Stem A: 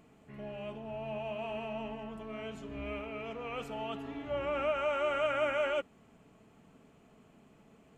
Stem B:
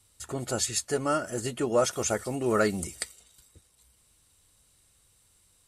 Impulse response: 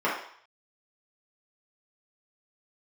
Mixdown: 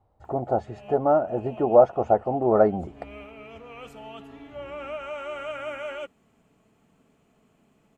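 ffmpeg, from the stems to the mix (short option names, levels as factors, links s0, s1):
-filter_complex "[0:a]highshelf=f=5800:g=5,adelay=250,volume=0.708[s0];[1:a]lowpass=f=760:t=q:w=5.3,volume=1.26,asplit=2[s1][s2];[s2]apad=whole_len=362827[s3];[s0][s3]sidechaincompress=threshold=0.0316:ratio=8:attack=39:release=331[s4];[s4][s1]amix=inputs=2:normalize=0"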